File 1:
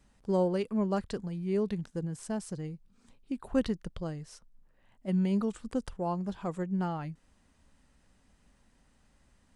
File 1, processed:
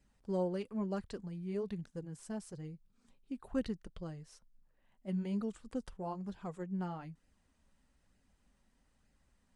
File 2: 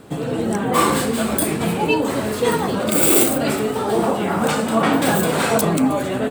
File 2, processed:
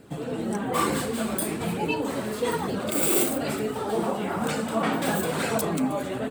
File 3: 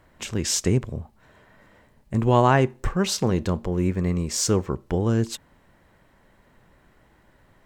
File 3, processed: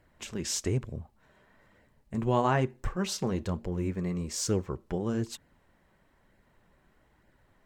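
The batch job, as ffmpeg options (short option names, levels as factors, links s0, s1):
-af "flanger=delay=0.4:depth=5:regen=-45:speed=1.1:shape=sinusoidal,volume=0.631"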